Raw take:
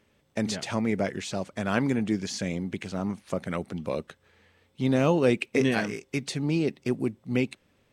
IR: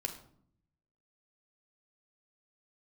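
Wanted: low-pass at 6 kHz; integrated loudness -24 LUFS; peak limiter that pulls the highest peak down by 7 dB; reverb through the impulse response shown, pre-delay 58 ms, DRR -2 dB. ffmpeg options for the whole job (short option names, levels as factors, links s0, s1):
-filter_complex "[0:a]lowpass=6000,alimiter=limit=0.15:level=0:latency=1,asplit=2[s0][s1];[1:a]atrim=start_sample=2205,adelay=58[s2];[s1][s2]afir=irnorm=-1:irlink=0,volume=1.19[s3];[s0][s3]amix=inputs=2:normalize=0,volume=1.26"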